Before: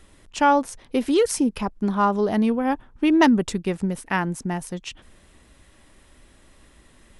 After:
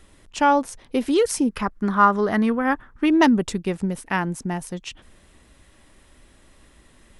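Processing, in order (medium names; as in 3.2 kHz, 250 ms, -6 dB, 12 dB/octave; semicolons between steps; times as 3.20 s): 1.49–3.06 s: high-order bell 1.5 kHz +9 dB 1.1 oct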